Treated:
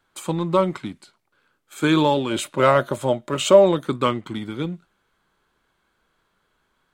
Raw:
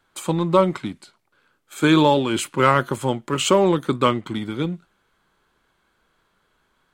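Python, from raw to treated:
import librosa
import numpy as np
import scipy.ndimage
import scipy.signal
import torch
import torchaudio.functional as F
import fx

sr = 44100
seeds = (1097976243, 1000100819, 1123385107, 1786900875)

y = fx.small_body(x, sr, hz=(610.0, 3700.0), ring_ms=45, db=fx.line((2.3, 17.0), (3.82, 13.0)), at=(2.3, 3.82), fade=0.02)
y = y * 10.0 ** (-2.5 / 20.0)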